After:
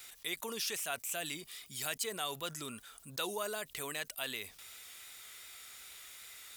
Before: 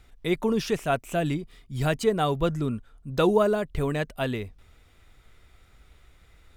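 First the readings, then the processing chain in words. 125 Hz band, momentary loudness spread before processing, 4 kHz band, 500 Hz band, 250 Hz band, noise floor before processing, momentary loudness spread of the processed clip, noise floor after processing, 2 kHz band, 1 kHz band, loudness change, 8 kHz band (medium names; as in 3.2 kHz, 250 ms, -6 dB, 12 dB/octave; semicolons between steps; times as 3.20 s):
-25.0 dB, 11 LU, -1.5 dB, -18.0 dB, -21.5 dB, -57 dBFS, 13 LU, -60 dBFS, -6.5 dB, -13.5 dB, -13.0 dB, +5.0 dB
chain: vibrato 2.6 Hz 32 cents; differentiator; level flattener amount 50%; trim +1 dB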